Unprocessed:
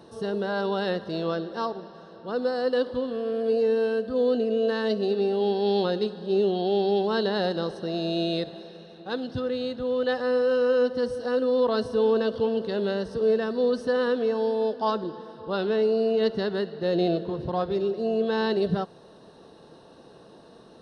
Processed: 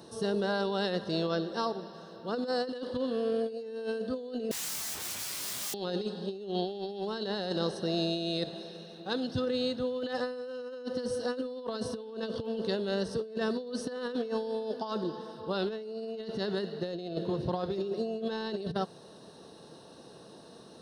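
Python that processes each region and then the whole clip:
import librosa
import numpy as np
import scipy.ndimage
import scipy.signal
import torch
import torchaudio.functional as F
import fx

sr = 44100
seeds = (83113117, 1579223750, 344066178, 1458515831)

y = fx.chain(x, sr, fx.peak_eq(hz=310.0, db=-3.0, octaves=0.62),
    fx.overflow_wrap(gain_db=33.0),
    fx.detune_double(cents=27), at=(4.51, 5.74))
y = scipy.signal.sosfilt(scipy.signal.butter(2, 80.0, 'highpass', fs=sr, output='sos'), y)
y = fx.bass_treble(y, sr, bass_db=2, treble_db=10)
y = fx.over_compress(y, sr, threshold_db=-27.0, ratio=-0.5)
y = y * 10.0 ** (-5.0 / 20.0)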